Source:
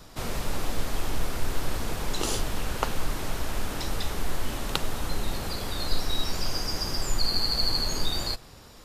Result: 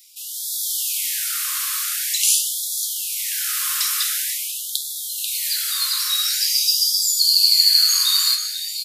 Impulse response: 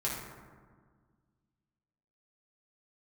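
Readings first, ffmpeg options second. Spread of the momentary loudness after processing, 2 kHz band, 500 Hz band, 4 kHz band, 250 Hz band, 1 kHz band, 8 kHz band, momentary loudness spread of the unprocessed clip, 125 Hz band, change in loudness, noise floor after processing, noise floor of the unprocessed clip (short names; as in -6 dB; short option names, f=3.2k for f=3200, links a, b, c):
12 LU, +5.0 dB, under -40 dB, +13.0 dB, under -40 dB, -3.5 dB, +18.0 dB, 8 LU, under -40 dB, +13.0 dB, -30 dBFS, -48 dBFS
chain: -filter_complex "[0:a]aecho=1:1:489:0.299,dynaudnorm=f=130:g=7:m=12dB,aemphasis=mode=production:type=riaa,asplit=2[a][b];[1:a]atrim=start_sample=2205,asetrate=23373,aresample=44100[c];[b][c]afir=irnorm=-1:irlink=0,volume=-7.5dB[d];[a][d]amix=inputs=2:normalize=0,afftfilt=real='re*gte(b*sr/1024,990*pow(3300/990,0.5+0.5*sin(2*PI*0.46*pts/sr)))':imag='im*gte(b*sr/1024,990*pow(3300/990,0.5+0.5*sin(2*PI*0.46*pts/sr)))':win_size=1024:overlap=0.75,volume=-9dB"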